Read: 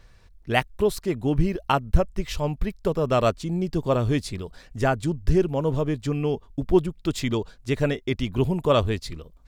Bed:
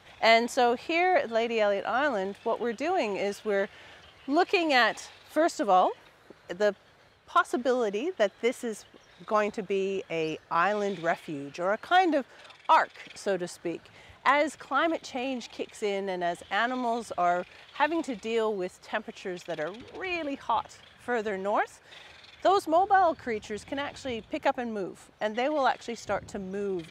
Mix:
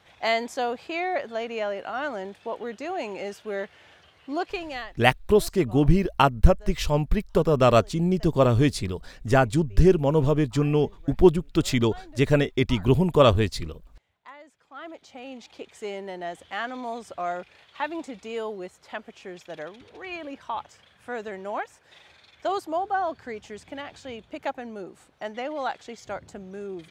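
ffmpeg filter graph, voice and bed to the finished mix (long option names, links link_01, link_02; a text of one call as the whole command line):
ffmpeg -i stem1.wav -i stem2.wav -filter_complex "[0:a]adelay=4500,volume=3dB[link_01];[1:a]volume=15.5dB,afade=type=out:start_time=4.32:duration=0.64:silence=0.105925,afade=type=in:start_time=14.57:duration=1.19:silence=0.112202[link_02];[link_01][link_02]amix=inputs=2:normalize=0" out.wav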